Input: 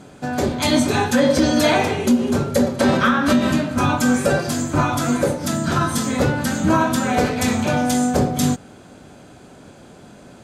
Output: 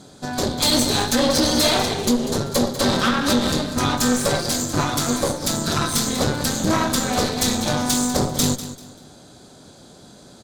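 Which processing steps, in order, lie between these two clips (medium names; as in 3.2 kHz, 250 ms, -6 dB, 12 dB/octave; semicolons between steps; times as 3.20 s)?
resonant high shelf 3.2 kHz +6 dB, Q 3; Chebyshev shaper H 6 -14 dB, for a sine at -2 dBFS; in parallel at -10 dB: overload inside the chain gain 17 dB; on the sum: feedback delay 195 ms, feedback 27%, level -13 dB; trim -5.5 dB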